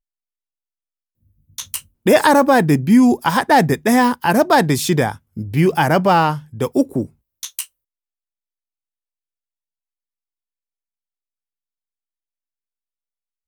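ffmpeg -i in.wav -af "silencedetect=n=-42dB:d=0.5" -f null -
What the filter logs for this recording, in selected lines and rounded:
silence_start: 0.00
silence_end: 1.58 | silence_duration: 1.58
silence_start: 7.66
silence_end: 13.48 | silence_duration: 5.81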